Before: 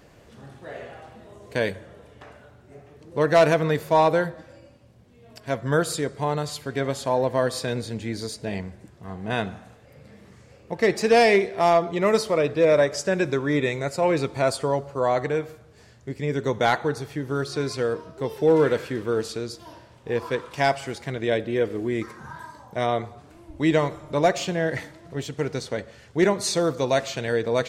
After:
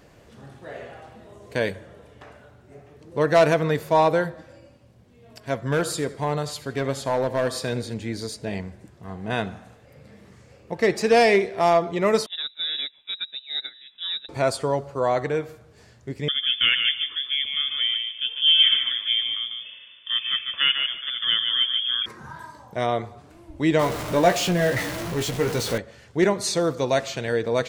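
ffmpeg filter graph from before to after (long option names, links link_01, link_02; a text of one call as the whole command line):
ffmpeg -i in.wav -filter_complex "[0:a]asettb=1/sr,asplit=3[link_01][link_02][link_03];[link_01]atrim=end=5.624[link_04];[link_02]atrim=start=5.62:end=7.94,asetpts=PTS-STARTPTS,afade=type=in:duration=0.004:curve=qsin,afade=type=out:start_time=2.316:duration=0.004:curve=qsin,aecho=1:1:82|164|246:0.141|0.0438|0.0136,atrim=end_sample=102312,asoftclip=type=hard:threshold=-17dB[link_05];[link_03]atrim=start=7.936[link_06];[link_04][link_05]acrossfade=duration=0.004:curve1=hsin:curve2=qsin[link_07];[link_07][link_06]acrossfade=duration=0.004:curve1=qsin:curve2=hsin,asettb=1/sr,asplit=3[link_08][link_09][link_10];[link_08]atrim=end=12.264[link_11];[link_09]atrim=start=12.26:end=14.29,asetpts=PTS-STARTPTS,afade=type=in:duration=0.004:curve=qsin,afade=type=out:start_time=2.026:duration=0.004:curve=qsin,agate=range=-18dB:threshold=-22dB:ratio=16:release=100:detection=peak,acrossover=split=290|3000[link_12][link_13][link_14];[link_13]acompressor=threshold=-45dB:ratio=2:attack=3.2:release=140:knee=2.83:detection=peak[link_15];[link_12][link_15][link_14]amix=inputs=3:normalize=0,lowpass=frequency=3400:width_type=q:width=0.5098,lowpass=frequency=3400:width_type=q:width=0.6013,lowpass=frequency=3400:width_type=q:width=0.9,lowpass=frequency=3400:width_type=q:width=2.563,afreqshift=-4000[link_16];[link_10]atrim=start=14.286[link_17];[link_11][link_16]acrossfade=duration=0.004:curve1=hsin:curve2=qsin[link_18];[link_18][link_17]acrossfade=duration=0.004:curve1=qsin:curve2=hsin,asettb=1/sr,asplit=3[link_19][link_20][link_21];[link_19]atrim=end=16.284[link_22];[link_20]atrim=start=16.28:end=22.06,asetpts=PTS-STARTPTS,afade=type=in:duration=0.004:curve=qsin,afade=type=out:start_time=5.776:duration=0.004:curve=qsin,bandreject=frequency=2800:width=6.3,asplit=2[link_23][link_24];[link_24]adelay=147,lowpass=frequency=2100:poles=1,volume=-4.5dB,asplit=2[link_25][link_26];[link_26]adelay=147,lowpass=frequency=2100:poles=1,volume=0.24,asplit=2[link_27][link_28];[link_28]adelay=147,lowpass=frequency=2100:poles=1,volume=0.24[link_29];[link_23][link_25][link_27][link_29]amix=inputs=4:normalize=0,atrim=end_sample=254898,lowpass=frequency=3100:width_type=q:width=0.5098,lowpass=frequency=3100:width_type=q:width=0.6013,lowpass=frequency=3100:width_type=q:width=0.9,lowpass=frequency=3100:width_type=q:width=2.563,afreqshift=-3600[link_30];[link_21]atrim=start=22.056[link_31];[link_22][link_30]acrossfade=duration=0.004:curve1=hsin:curve2=qsin[link_32];[link_32][link_31]acrossfade=duration=0.004:curve1=qsin:curve2=hsin,asettb=1/sr,asplit=3[link_33][link_34][link_35];[link_33]atrim=end=23.794[link_36];[link_34]atrim=start=23.79:end=25.78,asetpts=PTS-STARTPTS,afade=type=in:duration=0.004:curve=qsin,afade=type=out:start_time=1.986:duration=0.004:curve=qsin,aeval=exprs='val(0)+0.5*0.0473*sgn(val(0))':channel_layout=same,asplit=2[link_37][link_38];[link_38]adelay=17,volume=-6dB[link_39];[link_37][link_39]amix=inputs=2:normalize=0,atrim=end_sample=87759[link_40];[link_35]atrim=start=25.776[link_41];[link_36][link_40]acrossfade=duration=0.004:curve1=hsin:curve2=qsin[link_42];[link_42][link_41]acrossfade=duration=0.004:curve1=qsin:curve2=hsin" out.wav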